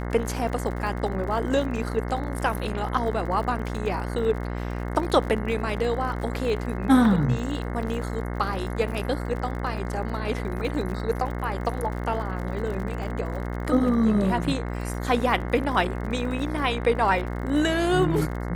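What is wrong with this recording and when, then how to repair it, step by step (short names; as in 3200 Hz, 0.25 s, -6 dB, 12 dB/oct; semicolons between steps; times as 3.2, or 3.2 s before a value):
buzz 60 Hz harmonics 36 -30 dBFS
crackle 56/s -34 dBFS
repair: de-click; de-hum 60 Hz, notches 36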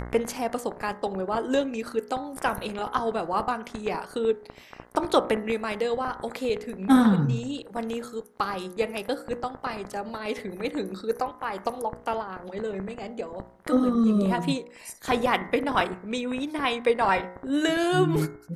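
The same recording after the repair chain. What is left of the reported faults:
none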